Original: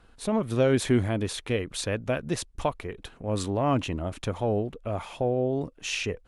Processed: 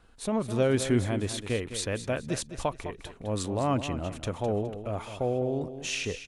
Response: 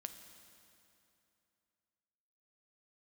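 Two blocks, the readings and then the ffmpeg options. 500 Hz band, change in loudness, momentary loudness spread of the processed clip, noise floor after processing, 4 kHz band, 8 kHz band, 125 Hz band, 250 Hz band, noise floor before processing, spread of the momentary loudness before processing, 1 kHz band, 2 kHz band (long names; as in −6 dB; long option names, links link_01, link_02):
−2.0 dB, −2.0 dB, 9 LU, −52 dBFS, −1.5 dB, +1.0 dB, −2.0 dB, −2.0 dB, −57 dBFS, 9 LU, −2.0 dB, −2.0 dB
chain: -filter_complex "[0:a]equalizer=frequency=7600:width=1.1:gain=3.5,asplit=2[link_01][link_02];[link_02]aecho=0:1:208|416|624:0.282|0.0874|0.0271[link_03];[link_01][link_03]amix=inputs=2:normalize=0,volume=-2.5dB"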